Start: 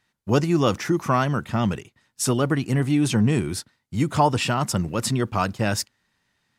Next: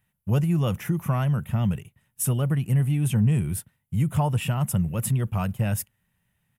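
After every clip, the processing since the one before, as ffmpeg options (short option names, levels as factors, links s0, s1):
-filter_complex "[0:a]firequalizer=gain_entry='entry(170,0);entry(280,-16);entry(540,-10);entry(1200,-14);entry(2900,-9);entry(4400,-24);entry(11000,3)':delay=0.05:min_phase=1,asplit=2[s0][s1];[s1]acompressor=threshold=0.0282:ratio=6,volume=0.891[s2];[s0][s2]amix=inputs=2:normalize=0"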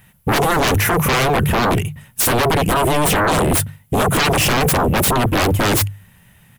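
-af "bandreject=f=50:t=h:w=6,bandreject=f=100:t=h:w=6,bandreject=f=150:t=h:w=6,aeval=exprs='0.237*sin(PI/2*8.91*val(0)/0.237)':c=same"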